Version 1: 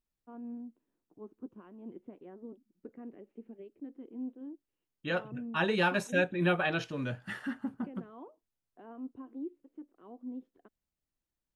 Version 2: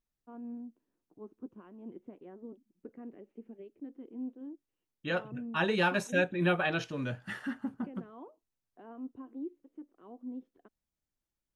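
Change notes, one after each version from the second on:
master: add parametric band 6,100 Hz +2.5 dB 0.27 octaves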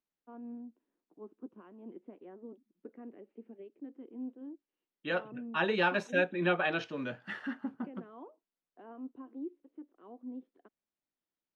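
master: add three-way crossover with the lows and the highs turned down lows −20 dB, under 180 Hz, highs −19 dB, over 5,000 Hz

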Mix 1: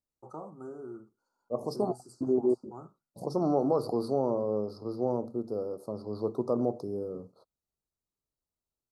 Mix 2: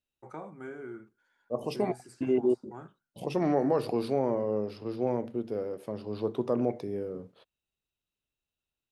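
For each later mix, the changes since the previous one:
master: remove Chebyshev band-stop filter 1,300–4,300 Hz, order 4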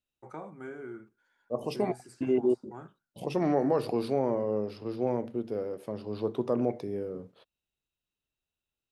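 nothing changed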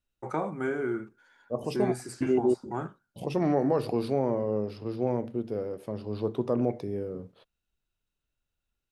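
first voice +11.5 dB
second voice: remove high-pass filter 170 Hz 6 dB per octave

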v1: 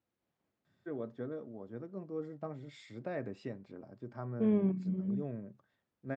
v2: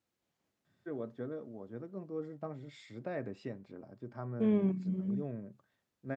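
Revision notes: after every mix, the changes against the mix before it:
second voice: remove low-pass filter 2,000 Hz 6 dB per octave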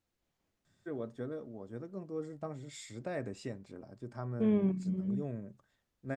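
first voice: remove high-frequency loss of the air 190 metres
master: remove high-pass filter 110 Hz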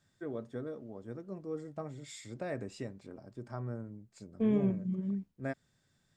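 first voice: entry −0.65 s

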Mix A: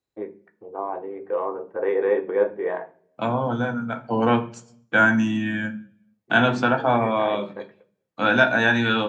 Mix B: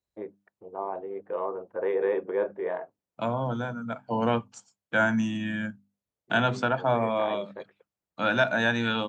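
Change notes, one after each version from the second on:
reverb: off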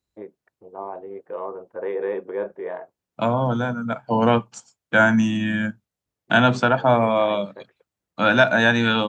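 second voice +7.5 dB
master: remove mains-hum notches 50/100/150/200/250/300 Hz

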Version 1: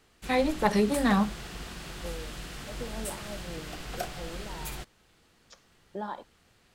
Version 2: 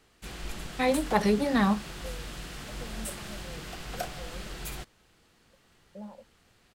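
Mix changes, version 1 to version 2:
first voice: entry +0.50 s
second voice: add pair of resonant band-passes 340 Hz, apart 1.3 octaves

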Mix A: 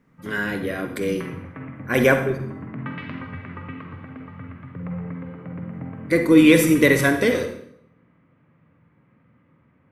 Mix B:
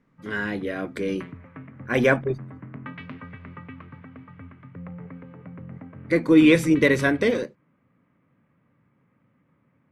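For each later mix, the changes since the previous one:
speech: add high-frequency loss of the air 68 metres
reverb: off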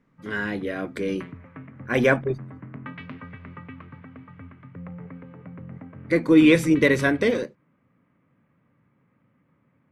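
nothing changed

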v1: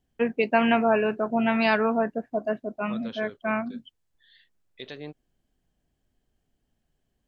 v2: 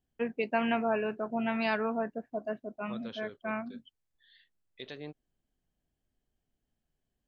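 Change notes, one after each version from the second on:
first voice −8.0 dB
second voice −4.0 dB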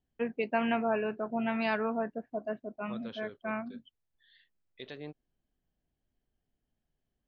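master: add high-frequency loss of the air 89 metres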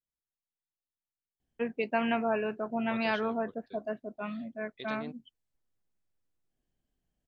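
first voice: entry +1.40 s
master: remove high-frequency loss of the air 89 metres

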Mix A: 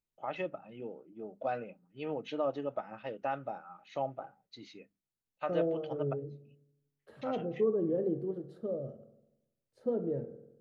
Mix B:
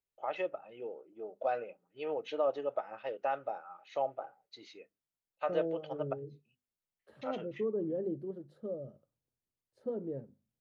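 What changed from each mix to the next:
first voice: add low shelf with overshoot 310 Hz −10.5 dB, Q 1.5
reverb: off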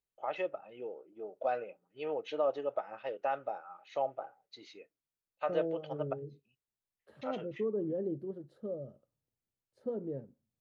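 master: remove mains-hum notches 50/100/150/200/250 Hz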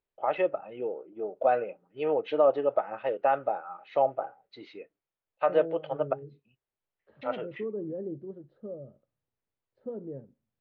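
first voice +10.0 dB
master: add high-frequency loss of the air 350 metres

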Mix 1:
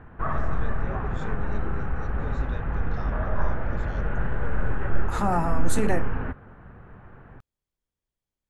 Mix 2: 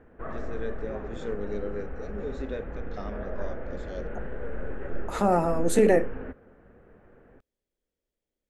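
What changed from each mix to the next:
background −10.0 dB
master: add graphic EQ with 10 bands 125 Hz −7 dB, 250 Hz +5 dB, 500 Hz +11 dB, 1,000 Hz −6 dB, 2,000 Hz +3 dB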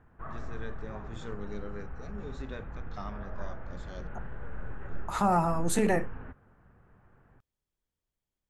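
background −4.0 dB
master: add graphic EQ with 10 bands 125 Hz +7 dB, 250 Hz −5 dB, 500 Hz −11 dB, 1,000 Hz +6 dB, 2,000 Hz −3 dB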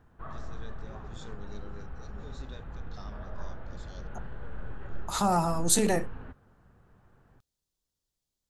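first voice −7.5 dB
master: add high shelf with overshoot 3,000 Hz +9 dB, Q 1.5

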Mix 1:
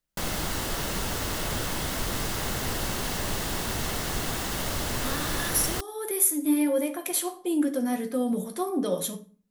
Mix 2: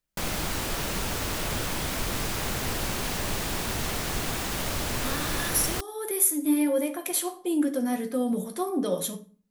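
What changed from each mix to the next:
background: remove notch filter 2,400 Hz, Q 11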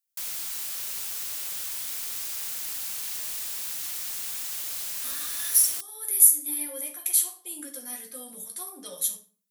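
speech: send +8.0 dB
master: add first-order pre-emphasis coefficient 0.97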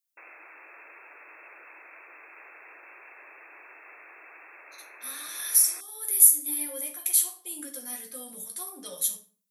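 background: add linear-phase brick-wall band-pass 290–2,700 Hz

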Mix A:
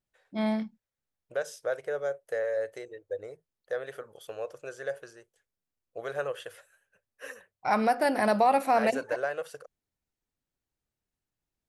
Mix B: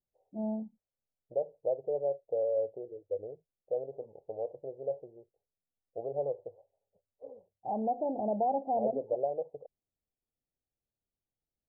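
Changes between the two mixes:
first voice −6.0 dB
master: add Butterworth low-pass 830 Hz 72 dB per octave

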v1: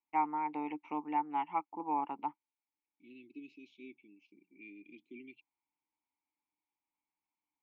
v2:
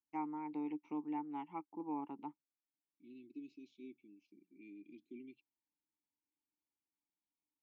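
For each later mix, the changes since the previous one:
master: add flat-topped bell 1,300 Hz −12 dB 2.9 octaves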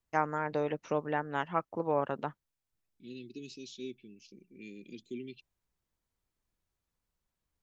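master: remove formant filter u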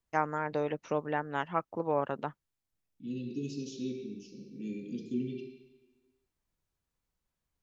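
reverb: on

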